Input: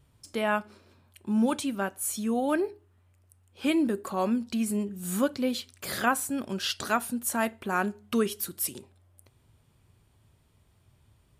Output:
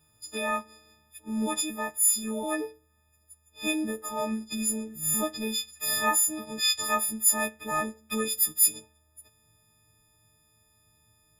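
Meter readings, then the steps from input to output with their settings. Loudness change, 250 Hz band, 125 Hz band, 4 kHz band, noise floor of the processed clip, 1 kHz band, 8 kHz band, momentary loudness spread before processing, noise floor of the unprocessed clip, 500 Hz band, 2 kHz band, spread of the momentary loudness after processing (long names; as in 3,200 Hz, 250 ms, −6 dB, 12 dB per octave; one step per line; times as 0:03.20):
+2.5 dB, −5.0 dB, −5.5 dB, +5.5 dB, −67 dBFS, −1.0 dB, +10.0 dB, 6 LU, −65 dBFS, −4.0 dB, −0.5 dB, 11 LU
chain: every partial snapped to a pitch grid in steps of 6 semitones
level −5 dB
Opus 24 kbit/s 48,000 Hz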